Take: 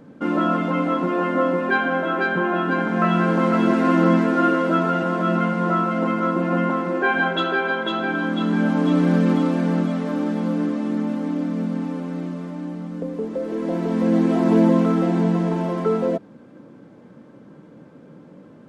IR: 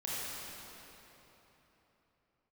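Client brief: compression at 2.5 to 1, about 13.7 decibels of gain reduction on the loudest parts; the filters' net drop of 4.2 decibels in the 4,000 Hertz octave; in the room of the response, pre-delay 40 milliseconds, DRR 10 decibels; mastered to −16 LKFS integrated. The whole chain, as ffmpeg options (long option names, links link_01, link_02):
-filter_complex "[0:a]equalizer=frequency=4000:width_type=o:gain=-5.5,acompressor=threshold=-34dB:ratio=2.5,asplit=2[link_01][link_02];[1:a]atrim=start_sample=2205,adelay=40[link_03];[link_02][link_03]afir=irnorm=-1:irlink=0,volume=-14.5dB[link_04];[link_01][link_04]amix=inputs=2:normalize=0,volume=15.5dB"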